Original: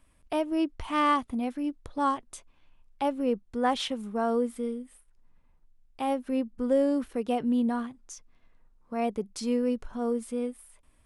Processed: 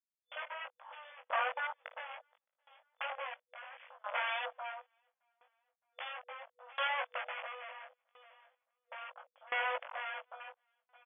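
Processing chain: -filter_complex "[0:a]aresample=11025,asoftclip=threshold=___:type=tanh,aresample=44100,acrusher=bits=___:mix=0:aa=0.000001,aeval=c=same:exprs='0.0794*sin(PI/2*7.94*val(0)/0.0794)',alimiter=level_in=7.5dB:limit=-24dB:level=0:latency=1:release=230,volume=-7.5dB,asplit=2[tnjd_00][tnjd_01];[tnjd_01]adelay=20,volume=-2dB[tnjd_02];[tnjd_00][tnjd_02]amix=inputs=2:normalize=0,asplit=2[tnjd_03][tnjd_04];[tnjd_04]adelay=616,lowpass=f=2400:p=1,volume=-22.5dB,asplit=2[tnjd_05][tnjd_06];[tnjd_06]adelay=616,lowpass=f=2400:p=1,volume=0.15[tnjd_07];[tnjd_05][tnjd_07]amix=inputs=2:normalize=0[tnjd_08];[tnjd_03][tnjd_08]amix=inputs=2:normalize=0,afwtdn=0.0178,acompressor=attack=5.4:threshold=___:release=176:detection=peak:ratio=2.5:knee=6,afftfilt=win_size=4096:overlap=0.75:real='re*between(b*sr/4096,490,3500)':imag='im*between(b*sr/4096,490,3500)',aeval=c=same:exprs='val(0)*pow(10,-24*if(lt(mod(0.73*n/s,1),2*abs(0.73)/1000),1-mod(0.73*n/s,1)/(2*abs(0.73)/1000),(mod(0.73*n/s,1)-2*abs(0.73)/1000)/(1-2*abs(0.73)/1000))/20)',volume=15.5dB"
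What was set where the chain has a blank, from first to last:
-24dB, 6, -49dB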